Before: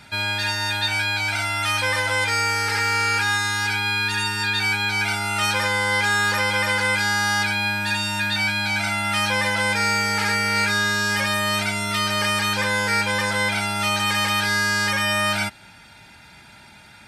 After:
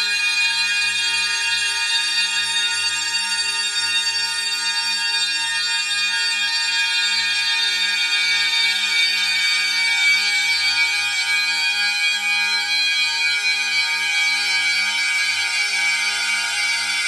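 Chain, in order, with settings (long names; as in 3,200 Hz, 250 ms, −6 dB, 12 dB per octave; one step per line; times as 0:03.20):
meter weighting curve ITU-R 468
extreme stretch with random phases 16×, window 0.50 s, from 0:04.05
level −4 dB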